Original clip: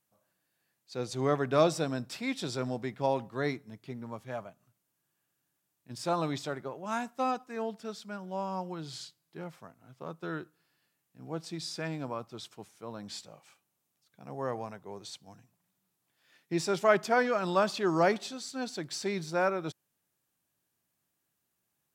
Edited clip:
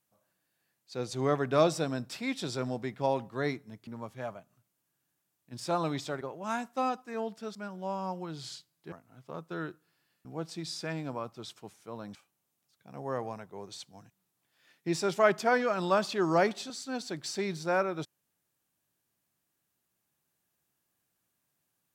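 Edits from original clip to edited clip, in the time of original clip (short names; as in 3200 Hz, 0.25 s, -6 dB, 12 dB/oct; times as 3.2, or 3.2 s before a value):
shrink pauses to 80%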